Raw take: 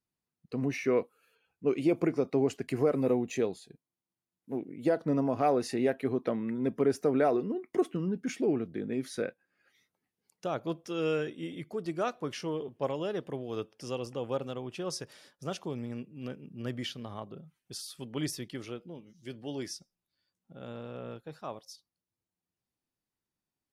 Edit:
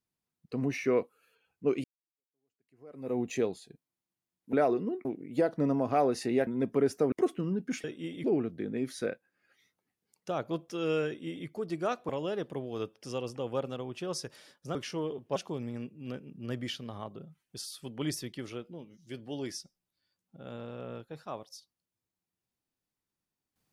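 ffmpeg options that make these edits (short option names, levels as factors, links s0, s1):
-filter_complex "[0:a]asplit=11[s0][s1][s2][s3][s4][s5][s6][s7][s8][s9][s10];[s0]atrim=end=1.84,asetpts=PTS-STARTPTS,afade=t=out:st=1.836:d=0.004:c=hsin[s11];[s1]atrim=start=1.84:end=4.532,asetpts=PTS-STARTPTS,afade=t=in:d=1.36:c=exp[s12];[s2]atrim=start=7.158:end=7.682[s13];[s3]atrim=start=4.528:end=5.952[s14];[s4]atrim=start=6.508:end=7.162[s15];[s5]atrim=start=7.678:end=8.402[s16];[s6]atrim=start=11.228:end=11.632[s17];[s7]atrim=start=8.398:end=12.252[s18];[s8]atrim=start=12.858:end=15.522[s19];[s9]atrim=start=12.248:end=12.862[s20];[s10]atrim=start=15.518[s21];[s11][s12]concat=n=2:v=0:a=1[s22];[s22][s13]acrossfade=d=0.004:c1=hsin:c2=hsin[s23];[s23][s14]acrossfade=d=0.004:c1=hsin:c2=hsin[s24];[s24][s15]acrossfade=d=0.004:c1=hsin:c2=hsin[s25];[s25][s16]acrossfade=d=0.004:c1=hsin:c2=hsin[s26];[s26][s17]acrossfade=d=0.004:c1=hsin:c2=hsin[s27];[s27][s18]acrossfade=d=0.004:c1=hsin:c2=hsin[s28];[s28][s19]acrossfade=d=0.004:c1=hsin:c2=hsin[s29];[s29][s20]acrossfade=d=0.004:c1=hsin:c2=hsin[s30];[s30][s21]acrossfade=d=0.004:c1=hsin:c2=hsin"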